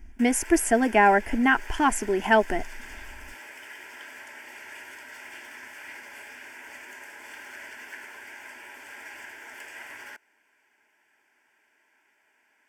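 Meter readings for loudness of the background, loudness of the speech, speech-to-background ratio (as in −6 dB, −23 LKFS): −42.0 LKFS, −22.5 LKFS, 19.5 dB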